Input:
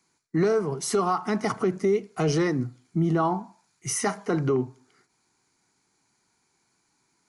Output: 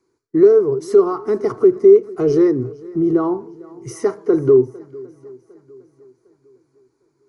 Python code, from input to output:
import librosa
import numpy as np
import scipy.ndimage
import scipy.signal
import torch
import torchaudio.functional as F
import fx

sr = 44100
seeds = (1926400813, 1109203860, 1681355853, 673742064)

y = fx.curve_eq(x, sr, hz=(130.0, 180.0, 390.0, 770.0, 1100.0, 2900.0, 5100.0, 7400.0), db=(0, -12, 11, -10, -4, -16, -11, -15))
y = fx.echo_swing(y, sr, ms=755, ratio=1.5, feedback_pct=35, wet_db=-22)
y = y * 10.0 ** (4.5 / 20.0)